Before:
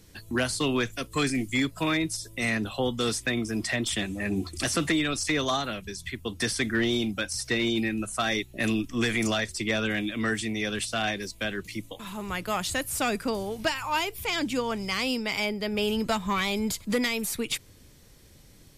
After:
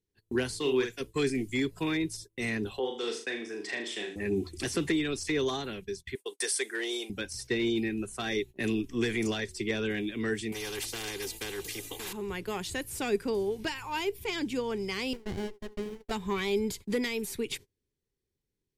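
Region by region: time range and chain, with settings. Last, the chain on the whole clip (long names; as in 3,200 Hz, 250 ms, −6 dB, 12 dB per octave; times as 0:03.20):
0:00.60–0:01.00: low-shelf EQ 290 Hz −10 dB + double-tracking delay 47 ms −5 dB
0:02.79–0:04.16: high-pass filter 460 Hz + high-frequency loss of the air 62 metres + flutter between parallel walls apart 6.6 metres, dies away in 0.45 s
0:06.15–0:07.10: high-pass filter 440 Hz 24 dB per octave + parametric band 9,000 Hz +14 dB 0.76 octaves
0:10.52–0:12.13: comb filter 2.5 ms, depth 81% + every bin compressed towards the loudest bin 4 to 1
0:15.13–0:16.11: high-pass filter 660 Hz 24 dB per octave + windowed peak hold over 33 samples
whole clip: high-shelf EQ 3,700 Hz −4 dB; noise gate −39 dBFS, range −28 dB; thirty-one-band graphic EQ 400 Hz +12 dB, 630 Hz −9 dB, 1,250 Hz −8 dB; level −4.5 dB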